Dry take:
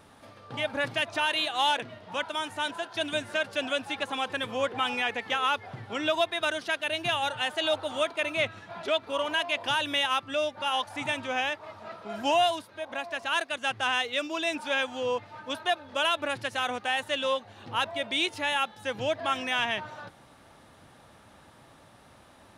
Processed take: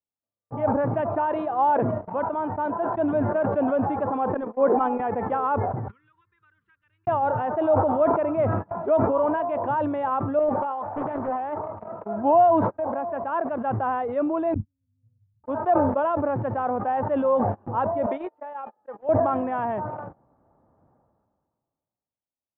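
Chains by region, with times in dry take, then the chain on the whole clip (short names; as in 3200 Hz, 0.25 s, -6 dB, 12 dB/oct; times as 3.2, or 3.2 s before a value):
4.34–5 HPF 240 Hz 24 dB/oct + gate -30 dBFS, range -15 dB + low shelf 330 Hz +5.5 dB
5.88–7.07 Butterworth band-stop 700 Hz, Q 0.57 + passive tone stack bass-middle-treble 10-0-10 + three-band squash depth 70%
10.39–11.59 low shelf 180 Hz -7 dB + negative-ratio compressor -33 dBFS + Doppler distortion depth 0.73 ms
14.54–15.44 inverse Chebyshev low-pass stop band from 640 Hz, stop band 80 dB + modulation noise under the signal 30 dB
18.06–19.09 HPF 430 Hz + resonator 610 Hz, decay 0.17 s, mix 70%
whole clip: LPF 1000 Hz 24 dB/oct; gate -43 dBFS, range -54 dB; sustainer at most 30 dB/s; gain +7.5 dB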